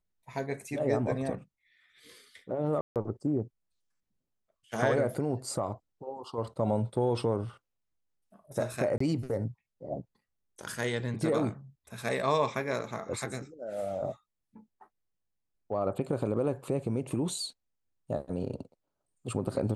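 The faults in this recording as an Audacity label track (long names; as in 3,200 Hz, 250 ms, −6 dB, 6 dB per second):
2.810000	2.960000	drop-out 148 ms
8.980000	9.000000	drop-out 24 ms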